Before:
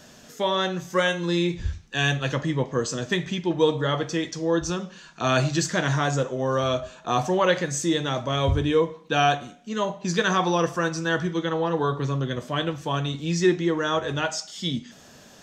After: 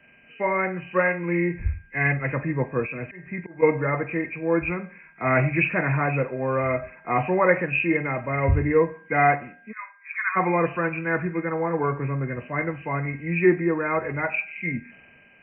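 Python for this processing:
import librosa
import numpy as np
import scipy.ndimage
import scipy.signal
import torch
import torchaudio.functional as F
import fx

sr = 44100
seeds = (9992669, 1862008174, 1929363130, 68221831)

y = fx.freq_compress(x, sr, knee_hz=1800.0, ratio=4.0)
y = fx.auto_swell(y, sr, attack_ms=257.0, at=(2.85, 3.61), fade=0.02)
y = fx.cheby1_bandpass(y, sr, low_hz=1100.0, high_hz=2300.0, order=3, at=(9.71, 10.35), fade=0.02)
y = y + 10.0 ** (-48.0 / 20.0) * np.sin(2.0 * np.pi * 1600.0 * np.arange(len(y)) / sr)
y = fx.band_widen(y, sr, depth_pct=40)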